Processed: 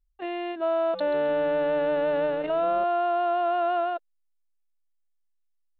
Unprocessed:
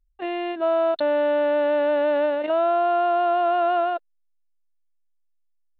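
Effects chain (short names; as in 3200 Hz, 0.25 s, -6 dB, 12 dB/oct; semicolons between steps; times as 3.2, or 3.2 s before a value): 0.8–2.84 frequency-shifting echo 0.133 s, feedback 36%, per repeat -140 Hz, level -13 dB; gain -4 dB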